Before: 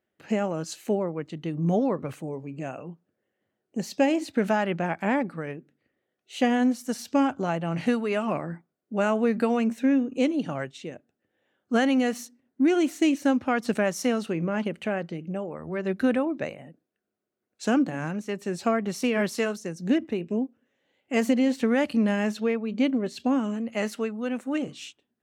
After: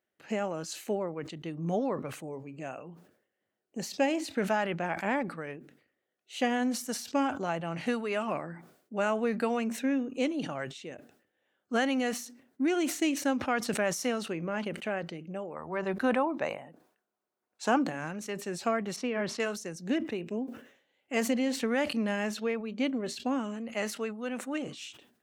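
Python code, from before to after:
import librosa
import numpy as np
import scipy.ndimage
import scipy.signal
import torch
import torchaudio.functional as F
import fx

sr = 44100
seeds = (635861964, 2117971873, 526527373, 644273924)

y = fx.peak_eq(x, sr, hz=930.0, db=11.0, octaves=0.85, at=(15.56, 17.84))
y = fx.spacing_loss(y, sr, db_at_10k=22, at=(18.96, 19.4))
y = fx.low_shelf(y, sr, hz=340.0, db=-8.0)
y = fx.sustainer(y, sr, db_per_s=100.0)
y = y * librosa.db_to_amplitude(-2.5)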